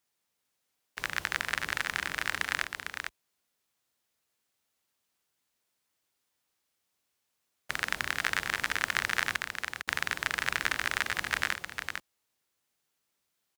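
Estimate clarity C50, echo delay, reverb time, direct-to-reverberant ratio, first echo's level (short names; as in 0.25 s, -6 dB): none, 0.452 s, none, none, -6.0 dB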